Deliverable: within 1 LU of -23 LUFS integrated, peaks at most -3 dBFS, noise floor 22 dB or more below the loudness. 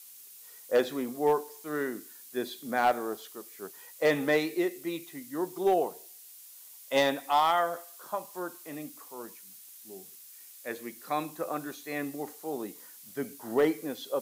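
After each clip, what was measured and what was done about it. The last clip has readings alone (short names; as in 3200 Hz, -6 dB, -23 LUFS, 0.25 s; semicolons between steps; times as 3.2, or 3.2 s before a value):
clipped 0.3%; flat tops at -17.0 dBFS; noise floor -51 dBFS; noise floor target -53 dBFS; loudness -31.0 LUFS; peak -17.0 dBFS; loudness target -23.0 LUFS
-> clip repair -17 dBFS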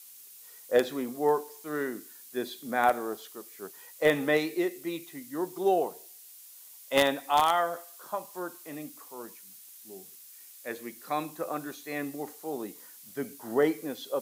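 clipped 0.0%; noise floor -51 dBFS; noise floor target -53 dBFS
-> denoiser 6 dB, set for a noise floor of -51 dBFS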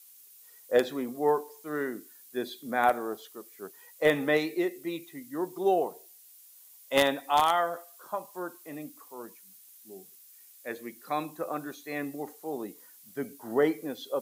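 noise floor -55 dBFS; loudness -30.5 LUFS; peak -8.0 dBFS; loudness target -23.0 LUFS
-> gain +7.5 dB; limiter -3 dBFS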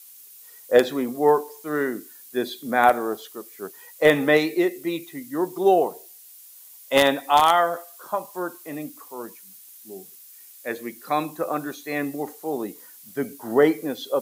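loudness -23.0 LUFS; peak -3.0 dBFS; noise floor -47 dBFS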